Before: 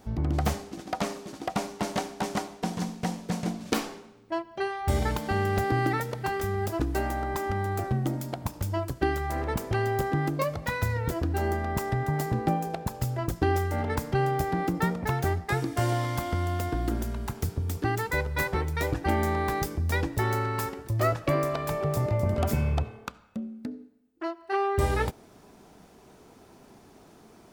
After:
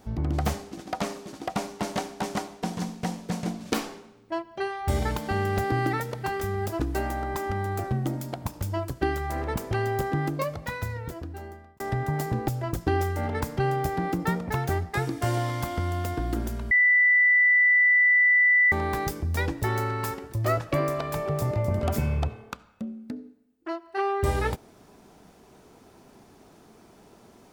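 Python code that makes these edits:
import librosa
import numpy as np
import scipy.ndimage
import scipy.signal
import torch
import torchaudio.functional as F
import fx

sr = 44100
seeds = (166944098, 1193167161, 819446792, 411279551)

y = fx.edit(x, sr, fx.fade_out_span(start_s=10.26, length_s=1.54),
    fx.cut(start_s=12.48, length_s=0.55),
    fx.bleep(start_s=17.26, length_s=2.01, hz=1980.0, db=-16.0), tone=tone)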